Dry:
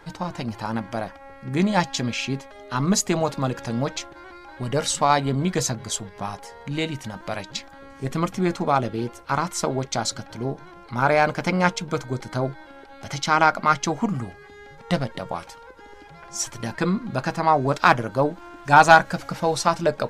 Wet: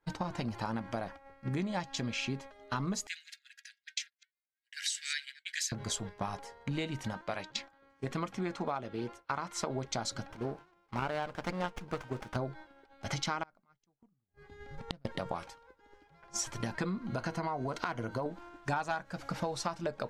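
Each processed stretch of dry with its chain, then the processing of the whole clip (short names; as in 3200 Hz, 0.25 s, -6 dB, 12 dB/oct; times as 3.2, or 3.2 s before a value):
3.07–5.72 reverse delay 0.129 s, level -13.5 dB + steep high-pass 1600 Hz 96 dB/oct + expander -42 dBFS
7.13–9.7 LPF 2400 Hz 6 dB/oct + tilt +2 dB/oct
10.32–12.36 low shelf 400 Hz -8.5 dB + running maximum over 9 samples
13.43–15.05 low shelf 230 Hz +10.5 dB + flipped gate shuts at -15 dBFS, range -31 dB
17.06–18.26 ripple EQ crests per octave 1.9, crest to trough 7 dB + compressor 2.5:1, threshold -22 dBFS
whole clip: expander -33 dBFS; high shelf 9300 Hz -7.5 dB; compressor 8:1, threshold -32 dBFS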